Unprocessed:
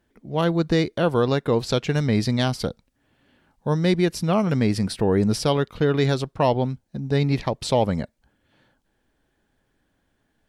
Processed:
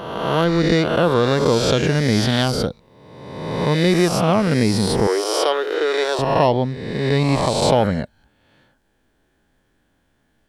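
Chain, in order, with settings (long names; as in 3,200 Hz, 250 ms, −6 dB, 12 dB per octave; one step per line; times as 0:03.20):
peak hold with a rise ahead of every peak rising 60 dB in 1.39 s
0:05.07–0:06.19: elliptic high-pass filter 340 Hz, stop band 40 dB
level +2 dB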